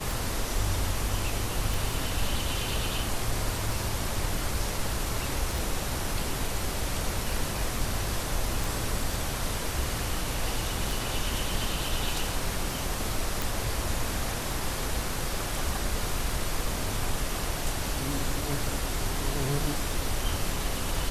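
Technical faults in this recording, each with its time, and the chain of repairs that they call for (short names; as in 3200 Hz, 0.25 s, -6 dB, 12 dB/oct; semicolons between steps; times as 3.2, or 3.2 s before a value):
tick 33 1/3 rpm
1.74 pop
5.58 pop
8.64 pop
13.42 pop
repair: de-click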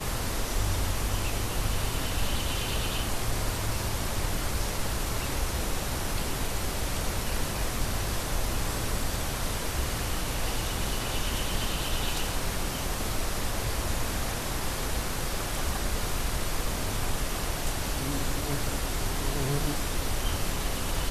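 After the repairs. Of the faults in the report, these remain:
5.58 pop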